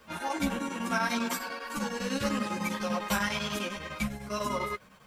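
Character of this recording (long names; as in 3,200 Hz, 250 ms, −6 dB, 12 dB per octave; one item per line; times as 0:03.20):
a quantiser's noise floor 12 bits, dither triangular
chopped level 10 Hz, depth 60%, duty 75%
a shimmering, thickened sound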